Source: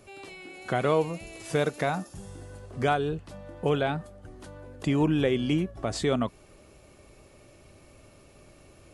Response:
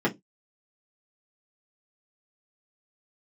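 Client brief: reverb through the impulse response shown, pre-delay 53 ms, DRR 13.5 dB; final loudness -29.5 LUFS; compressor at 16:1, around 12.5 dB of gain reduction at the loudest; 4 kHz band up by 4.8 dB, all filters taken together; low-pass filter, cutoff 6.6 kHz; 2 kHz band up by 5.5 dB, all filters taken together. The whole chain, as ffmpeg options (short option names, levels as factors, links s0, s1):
-filter_complex "[0:a]lowpass=6600,equalizer=f=2000:t=o:g=6.5,equalizer=f=4000:t=o:g=4,acompressor=threshold=0.0282:ratio=16,asplit=2[s0][s1];[1:a]atrim=start_sample=2205,adelay=53[s2];[s1][s2]afir=irnorm=-1:irlink=0,volume=0.0501[s3];[s0][s3]amix=inputs=2:normalize=0,volume=2.51"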